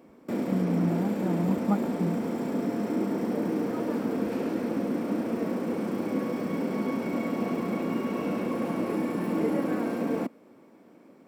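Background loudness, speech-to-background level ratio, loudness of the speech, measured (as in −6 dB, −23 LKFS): −29.5 LKFS, −1.0 dB, −30.5 LKFS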